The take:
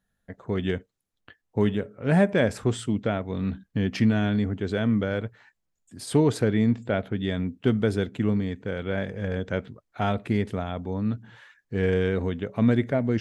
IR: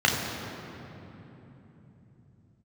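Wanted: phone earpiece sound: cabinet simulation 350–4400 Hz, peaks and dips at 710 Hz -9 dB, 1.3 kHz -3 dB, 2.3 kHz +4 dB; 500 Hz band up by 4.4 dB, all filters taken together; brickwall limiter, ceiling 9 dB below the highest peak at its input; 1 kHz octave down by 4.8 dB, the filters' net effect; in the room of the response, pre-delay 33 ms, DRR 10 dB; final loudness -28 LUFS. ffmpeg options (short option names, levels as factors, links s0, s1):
-filter_complex "[0:a]equalizer=f=500:t=o:g=9,equalizer=f=1000:t=o:g=-4,alimiter=limit=0.2:level=0:latency=1,asplit=2[s0][s1];[1:a]atrim=start_sample=2205,adelay=33[s2];[s1][s2]afir=irnorm=-1:irlink=0,volume=0.0447[s3];[s0][s3]amix=inputs=2:normalize=0,highpass=350,equalizer=f=710:t=q:w=4:g=-9,equalizer=f=1300:t=q:w=4:g=-3,equalizer=f=2300:t=q:w=4:g=4,lowpass=f=4400:w=0.5412,lowpass=f=4400:w=1.3066,volume=1.12"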